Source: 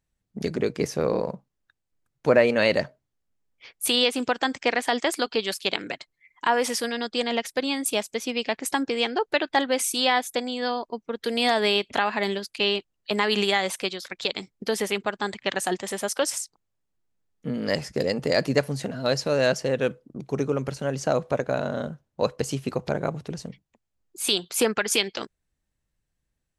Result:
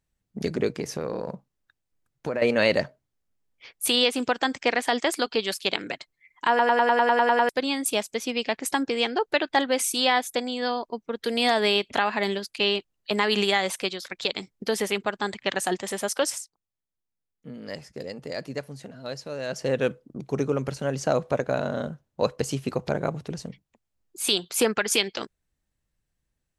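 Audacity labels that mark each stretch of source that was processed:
0.720000	2.420000	downward compressor, threshold −25 dBFS
6.490000	6.490000	stutter in place 0.10 s, 10 plays
16.270000	19.690000	duck −11 dB, fades 0.21 s

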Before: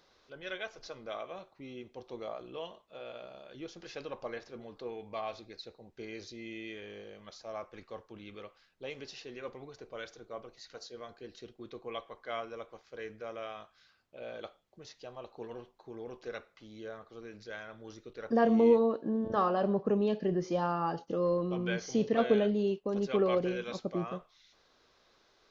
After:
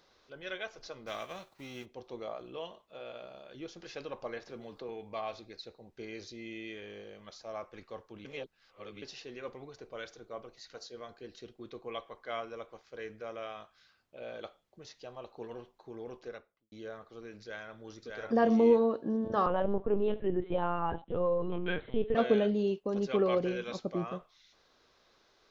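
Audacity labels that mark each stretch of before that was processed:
1.060000	1.840000	spectral envelope flattened exponent 0.6
4.470000	4.890000	multiband upward and downward compressor depth 70%
8.250000	9.020000	reverse
16.100000	16.720000	fade out and dull
17.420000	18.120000	delay throw 600 ms, feedback 15%, level −2 dB
19.460000	22.150000	linear-prediction vocoder at 8 kHz pitch kept

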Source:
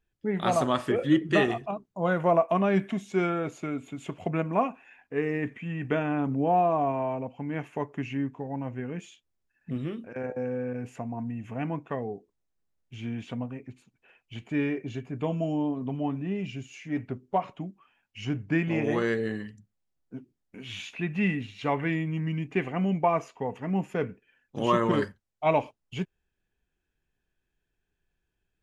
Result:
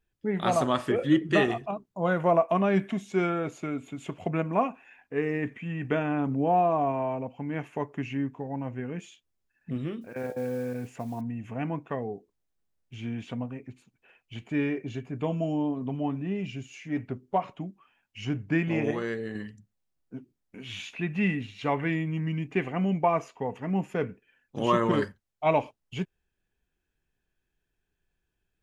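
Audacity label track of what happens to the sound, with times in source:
10.010000	11.210000	noise that follows the level under the signal 26 dB
18.910000	19.350000	clip gain −5 dB

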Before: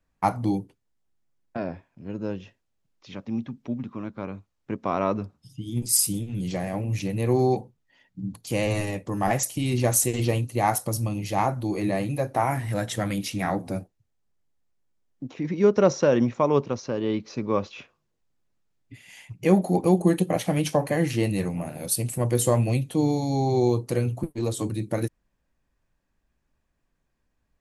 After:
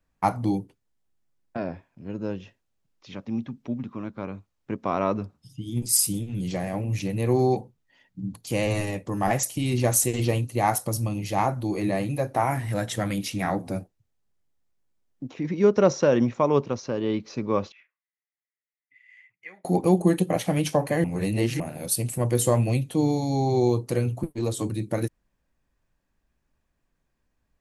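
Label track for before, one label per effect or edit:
17.720000	19.650000	resonant band-pass 2,000 Hz, Q 10
21.040000	21.600000	reverse

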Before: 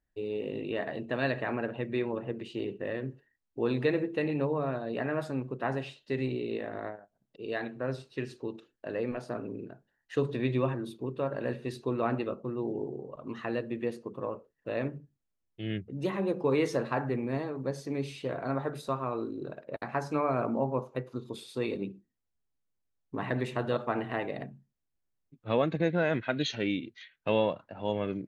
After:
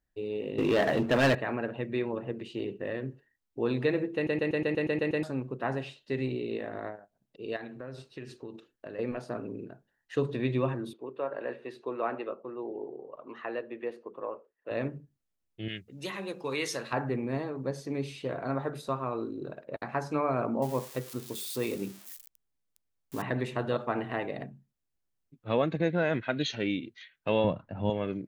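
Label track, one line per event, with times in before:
0.580000	1.350000	leveller curve on the samples passes 3
4.150000	4.150000	stutter in place 0.12 s, 9 plays
7.560000	8.990000	downward compressor, threshold −37 dBFS
10.930000	14.710000	three-way crossover with the lows and the highs turned down lows −20 dB, under 330 Hz, highs −14 dB, over 3,100 Hz
15.680000	16.930000	tilt shelving filter lows −9.5 dB, about 1,500 Hz
20.620000	23.220000	spike at every zero crossing of −32.5 dBFS
27.440000	27.900000	bass and treble bass +12 dB, treble −7 dB

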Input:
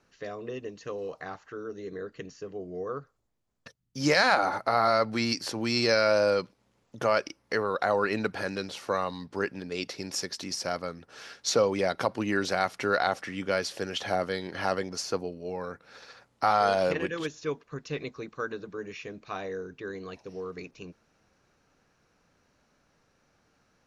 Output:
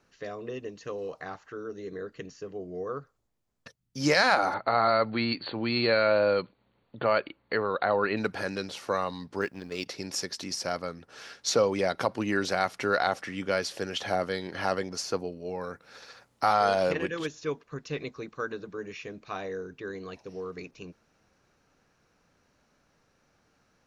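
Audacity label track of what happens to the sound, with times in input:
4.540000	8.170000	linear-phase brick-wall low-pass 4,600 Hz
9.410000	9.860000	mu-law and A-law mismatch coded by A
15.610000	16.540000	high-shelf EQ 7,700 Hz +7.5 dB

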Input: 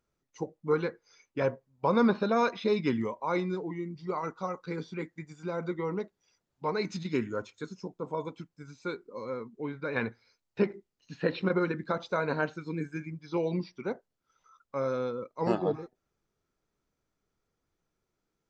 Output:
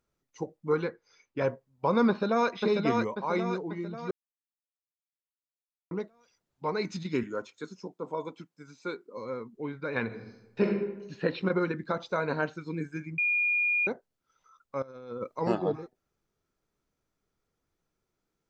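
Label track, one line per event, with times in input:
0.840000	1.410000	high-frequency loss of the air 58 metres
2.080000	2.500000	delay throw 540 ms, feedback 50%, level −3.5 dB
4.110000	5.910000	silence
7.230000	9.170000	high-pass filter 190 Hz
10.050000	10.700000	thrown reverb, RT60 0.96 s, DRR 0 dB
13.180000	13.870000	beep over 2,430 Hz −23.5 dBFS
14.820000	15.400000	compressor whose output falls as the input rises −38 dBFS, ratio −0.5

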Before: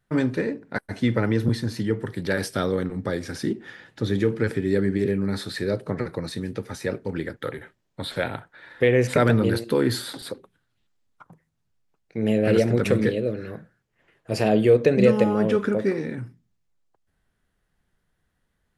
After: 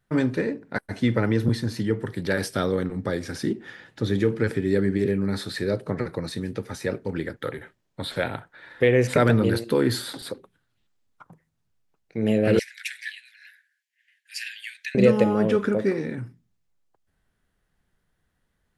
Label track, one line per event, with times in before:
12.590000	14.950000	Butterworth high-pass 1,600 Hz 96 dB per octave

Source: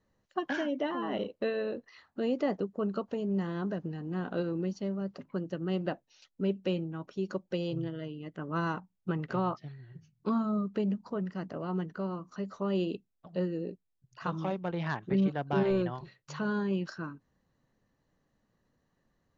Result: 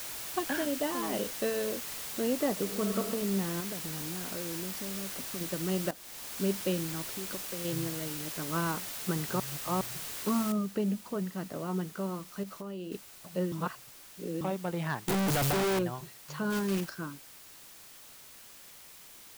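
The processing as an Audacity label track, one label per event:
0.650000	1.340000	downward expander −35 dBFS
2.520000	3.100000	thrown reverb, RT60 0.9 s, DRR 4.5 dB
3.600000	5.410000	downward compressor 4 to 1, threshold −37 dBFS
5.910000	6.410000	fade in, from −15 dB
7.030000	7.650000	downward compressor, threshold −37 dBFS
8.220000	8.220000	noise floor change −65 dB −58 dB
9.400000	9.810000	reverse
10.520000	10.520000	noise floor change −40 dB −53 dB
12.430000	12.920000	downward compressor 5 to 1, threshold −37 dBFS
13.520000	14.410000	reverse
15.080000	15.790000	sign of each sample alone
16.500000	16.910000	one scale factor per block 3 bits

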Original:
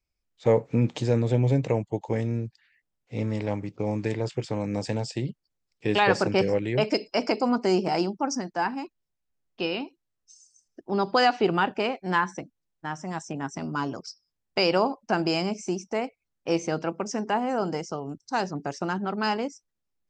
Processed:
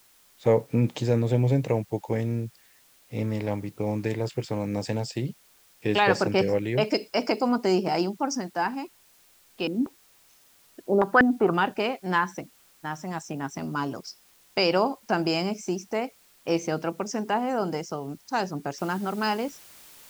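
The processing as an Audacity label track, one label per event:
9.670000	11.540000	low-pass on a step sequencer 5.2 Hz 250–3,800 Hz
18.780000	18.780000	noise floor change −59 dB −50 dB

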